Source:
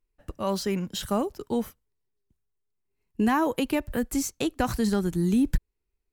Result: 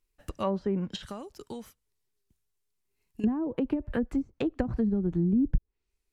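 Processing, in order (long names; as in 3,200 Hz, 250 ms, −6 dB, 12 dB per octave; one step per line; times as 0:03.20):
0:00.96–0:03.24: downward compressor 4 to 1, threshold −39 dBFS, peak gain reduction 15.5 dB
high-shelf EQ 2,100 Hz +9 dB
treble cut that deepens with the level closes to 310 Hz, closed at −20 dBFS
level −1 dB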